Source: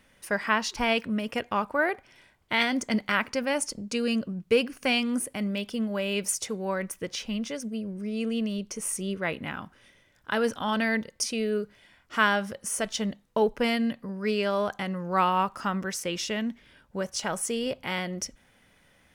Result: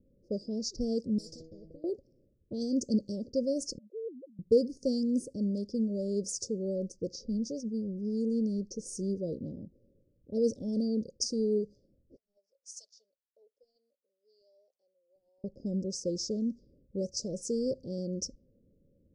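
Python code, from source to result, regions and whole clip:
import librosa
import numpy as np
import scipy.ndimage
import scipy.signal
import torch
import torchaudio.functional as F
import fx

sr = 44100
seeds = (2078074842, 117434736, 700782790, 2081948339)

y = fx.chain(x, sr, fx.stiff_resonator(f0_hz=160.0, decay_s=0.27, stiffness=0.002),
    fx.spectral_comp(ratio=10.0), at=(1.18, 1.84))
y = fx.chain(y, sr, fx.sine_speech(),
    fx.ladder_bandpass(hz=630.0, resonance_pct=35), at=(3.78, 4.39))
y = fx.chain(y, sr, fx.highpass(hz=1400.0, slope=24),
    fx.over_compress(threshold_db=-33.0, ratio=-0.5), at=(12.16, 15.44))
y = scipy.signal.sosfilt(scipy.signal.cheby1(5, 1.0, [550.0, 4800.0], 'bandstop', fs=sr, output='sos'), y)
y = fx.env_lowpass(y, sr, base_hz=540.0, full_db=-29.0)
y = scipy.signal.sosfilt(scipy.signal.butter(4, 6600.0, 'lowpass', fs=sr, output='sos'), y)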